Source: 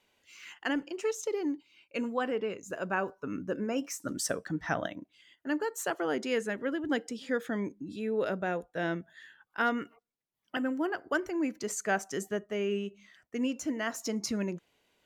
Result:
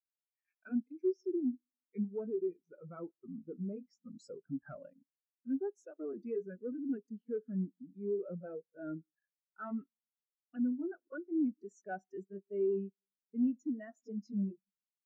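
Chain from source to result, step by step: pitch bend over the whole clip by -3 st ending unshifted; waveshaping leveller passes 3; on a send at -22 dB: reverberation RT60 1.4 s, pre-delay 5 ms; on the sum: spectral contrast expander 2.5:1; trim -7 dB

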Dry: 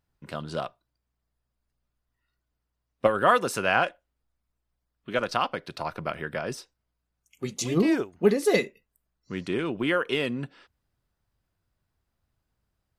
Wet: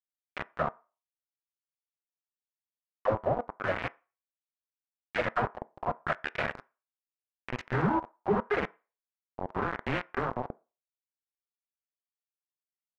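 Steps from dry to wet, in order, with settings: band-stop 880 Hz, Q 12; low-pass that closes with the level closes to 360 Hz, closed at -20.5 dBFS; FFT filter 120 Hz 0 dB, 190 Hz -11 dB, 330 Hz -12 dB, 750 Hz -1 dB, 1.1 kHz -4 dB, 4.3 kHz -5 dB, 7.3 kHz +5 dB, 12 kHz -8 dB; in parallel at -3 dB: sample-and-hold 37×; on the sum: phase dispersion lows, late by 83 ms, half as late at 430 Hz; bit crusher 5-bit; LFO low-pass sine 0.83 Hz 770–2300 Hz; on a send at -17 dB: reverberation RT60 0.30 s, pre-delay 3 ms

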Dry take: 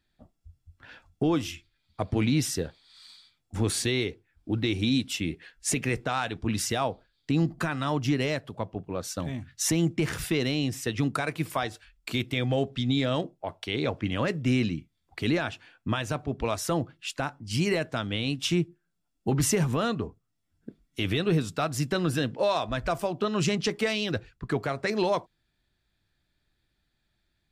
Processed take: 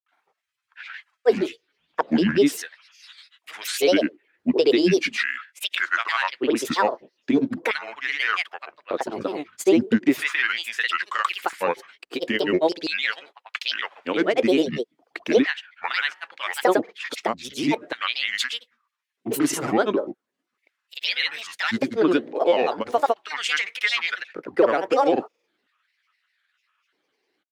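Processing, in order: LFO high-pass square 0.39 Hz 320–1800 Hz; granulator, pitch spread up and down by 7 st; tone controls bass -9 dB, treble -8 dB; trim +7.5 dB

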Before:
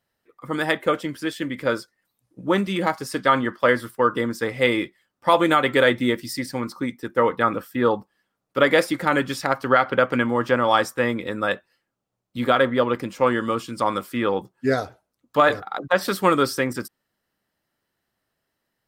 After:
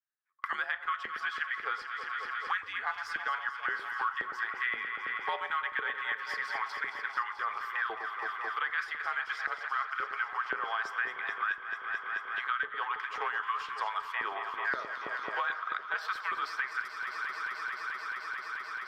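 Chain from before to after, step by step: gate -38 dBFS, range -44 dB; FFT filter 150 Hz 0 dB, 240 Hz -25 dB, 600 Hz -21 dB, 1.6 kHz +3 dB, 6 kHz -10 dB, 8.9 kHz -22 dB; reverse; compression, threshold -27 dBFS, peak gain reduction 12 dB; reverse; frequency shift -94 Hz; LFO high-pass saw up 1.9 Hz 410–1700 Hz; echo whose repeats swap between lows and highs 109 ms, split 1.1 kHz, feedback 88%, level -10 dB; on a send at -17.5 dB: reverberation RT60 0.65 s, pre-delay 6 ms; on the sum: three bands compressed up and down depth 100%; trim -6 dB

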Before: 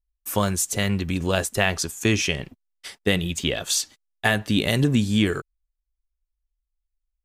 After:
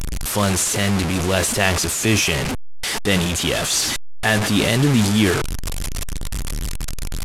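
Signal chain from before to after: one-bit delta coder 64 kbps, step -21 dBFS; transient shaper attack -4 dB, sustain +5 dB; trim +4 dB

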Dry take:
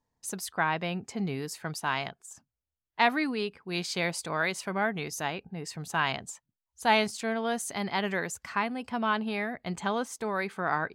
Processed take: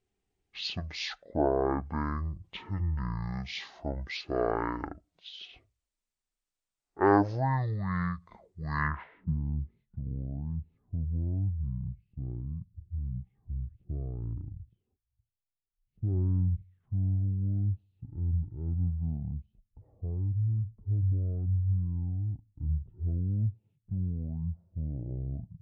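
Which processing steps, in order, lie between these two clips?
speed mistake 78 rpm record played at 33 rpm; low-pass sweep 12 kHz -> 120 Hz, 8.58–9.34 s

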